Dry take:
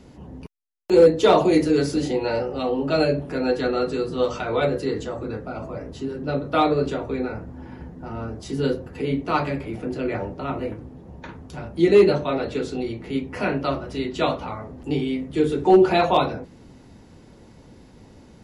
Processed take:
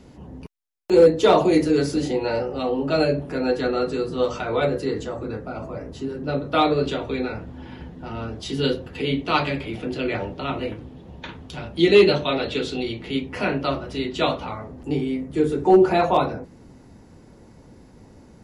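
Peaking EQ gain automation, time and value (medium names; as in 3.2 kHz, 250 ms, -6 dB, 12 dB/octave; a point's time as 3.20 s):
peaking EQ 3.3 kHz 0.97 oct
6.14 s 0 dB
6.75 s +6.5 dB
7.06 s +12.5 dB
12.96 s +12.5 dB
13.47 s +4.5 dB
14.56 s +4.5 dB
15.01 s -6 dB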